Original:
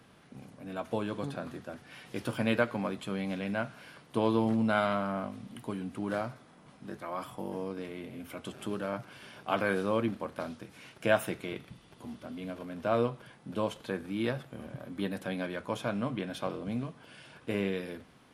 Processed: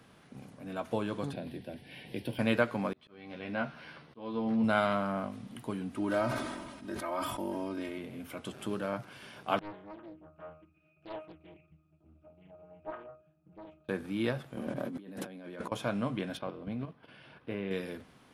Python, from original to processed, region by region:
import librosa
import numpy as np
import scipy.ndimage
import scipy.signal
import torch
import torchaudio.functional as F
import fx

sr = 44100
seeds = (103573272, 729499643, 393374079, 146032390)

y = fx.chain(x, sr, fx.fixed_phaser(hz=3000.0, stages=4),
    fx.band_squash(depth_pct=40), at=(1.33, 2.39))
y = fx.chain(y, sr, fx.savgol(points=15),
    fx.doubler(ms=13.0, db=-4.0),
    fx.auto_swell(attack_ms=642.0), at=(2.93, 4.64))
y = fx.chain(y, sr, fx.comb(ms=3.2, depth=0.72),
    fx.sustainer(db_per_s=36.0), at=(5.95, 7.98))
y = fx.chain(y, sr, fx.octave_resonator(note='D#', decay_s=0.32),
    fx.echo_single(ms=140, db=-22.5),
    fx.doppler_dist(depth_ms=0.69), at=(9.59, 13.89))
y = fx.chain(y, sr, fx.highpass(hz=240.0, slope=12),
    fx.low_shelf(hz=450.0, db=11.0),
    fx.over_compress(threshold_db=-42.0, ratio=-1.0), at=(14.57, 15.72))
y = fx.chain(y, sr, fx.level_steps(step_db=9),
    fx.moving_average(points=6), at=(16.37, 17.71))